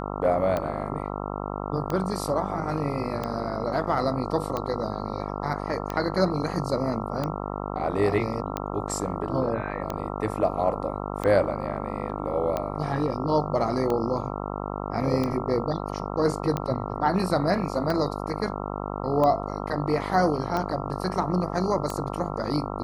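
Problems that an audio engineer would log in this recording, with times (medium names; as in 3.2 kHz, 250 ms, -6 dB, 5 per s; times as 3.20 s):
buzz 50 Hz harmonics 27 -32 dBFS
tick 45 rpm -15 dBFS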